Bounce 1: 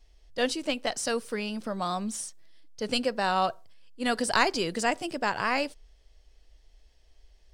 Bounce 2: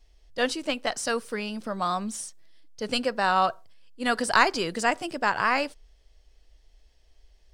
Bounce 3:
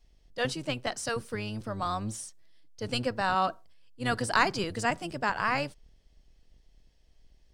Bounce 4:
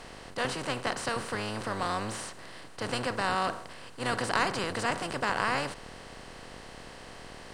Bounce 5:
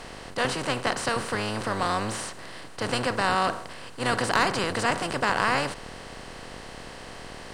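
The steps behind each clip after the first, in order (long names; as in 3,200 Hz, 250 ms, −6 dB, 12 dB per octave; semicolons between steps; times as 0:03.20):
dynamic equaliser 1,300 Hz, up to +6 dB, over −40 dBFS, Q 1.1
sub-octave generator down 1 octave, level 0 dB; level −4.5 dB
compressor on every frequency bin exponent 0.4; level −6.5 dB
gain into a clipping stage and back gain 16.5 dB; level +5 dB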